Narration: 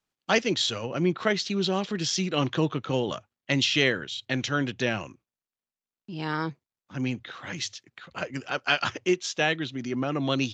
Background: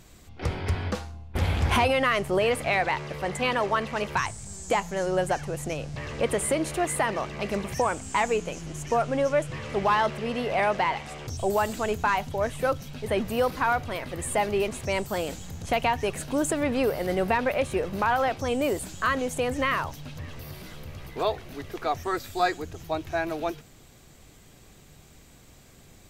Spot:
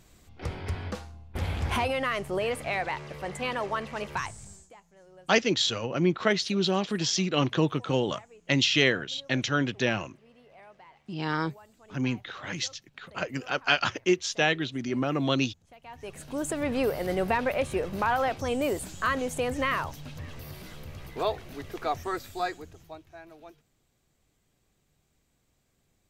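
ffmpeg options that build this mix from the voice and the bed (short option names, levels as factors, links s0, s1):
-filter_complex "[0:a]adelay=5000,volume=1.06[s0];[1:a]volume=10.6,afade=t=out:st=4.44:d=0.26:silence=0.0749894,afade=t=in:st=15.83:d=0.95:silence=0.0501187,afade=t=out:st=21.92:d=1.14:silence=0.133352[s1];[s0][s1]amix=inputs=2:normalize=0"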